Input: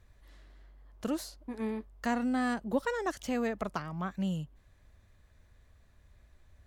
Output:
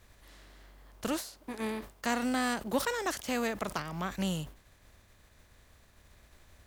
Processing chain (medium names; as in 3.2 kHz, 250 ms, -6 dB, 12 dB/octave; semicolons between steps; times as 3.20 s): spectral contrast reduction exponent 0.69; 1.12–3.78 s: high-pass 100 Hz 6 dB/octave; decay stretcher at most 150 dB/s